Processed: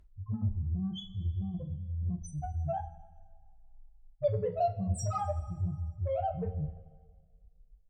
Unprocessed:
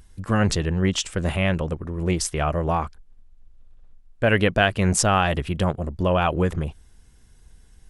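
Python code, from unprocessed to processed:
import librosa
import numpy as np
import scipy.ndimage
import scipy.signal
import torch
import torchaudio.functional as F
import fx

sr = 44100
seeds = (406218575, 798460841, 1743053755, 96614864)

y = fx.spec_topn(x, sr, count=1)
y = fx.cheby_harmonics(y, sr, harmonics=(8,), levels_db=(-34,), full_scale_db=-20.5)
y = fx.rev_double_slope(y, sr, seeds[0], early_s=0.28, late_s=1.7, knee_db=-18, drr_db=1.5)
y = y * 10.0 ** (-2.5 / 20.0)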